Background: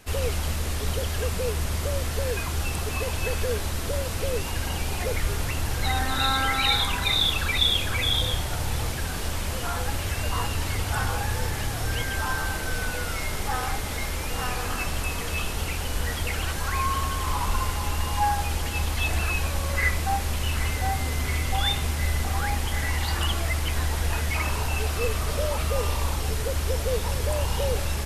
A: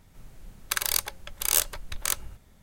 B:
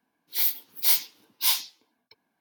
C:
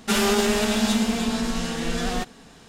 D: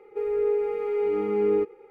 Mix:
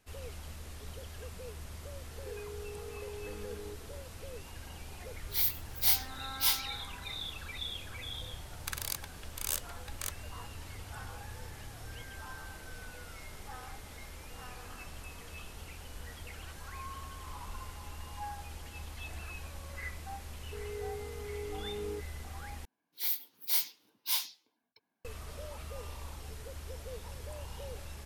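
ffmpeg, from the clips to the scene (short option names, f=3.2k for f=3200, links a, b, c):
-filter_complex "[4:a]asplit=2[a][b];[2:a]asplit=2[c][d];[0:a]volume=-18dB[e];[a]acompressor=threshold=-37dB:ratio=6:attack=3.2:release=140:knee=1:detection=peak[f];[e]asplit=2[g][h];[g]atrim=end=22.654[i];[d]atrim=end=2.4,asetpts=PTS-STARTPTS,volume=-8.5dB[j];[h]atrim=start=25.046[k];[f]atrim=end=1.9,asetpts=PTS-STARTPTS,volume=-7dB,afade=t=in:d=0.004:c=hsin,afade=t=out:st=1.896:d=0.004:c=hsin,adelay=2110[l];[c]atrim=end=2.4,asetpts=PTS-STARTPTS,volume=-5.5dB,afade=t=in:d=0.004:c=hsin,afade=t=out:st=2.396:d=0.004:c=hsin,adelay=4990[m];[1:a]atrim=end=2.62,asetpts=PTS-STARTPTS,volume=-11.5dB,afade=t=in:d=0.004:c=hsin,afade=t=out:st=2.616:d=0.004:c=hsin,adelay=7960[n];[b]atrim=end=1.9,asetpts=PTS-STARTPTS,volume=-17dB,afade=t=in:d=0.004:c=hsin,afade=t=out:st=1.896:d=0.004:c=hsin,adelay=897876S[o];[i][j]acrossfade=d=0.004:c1=hsin:c2=hsin[p];[p][k]acrossfade=d=0.004:c1=hsin:c2=hsin[q];[q][l][m][n][o]amix=inputs=5:normalize=0"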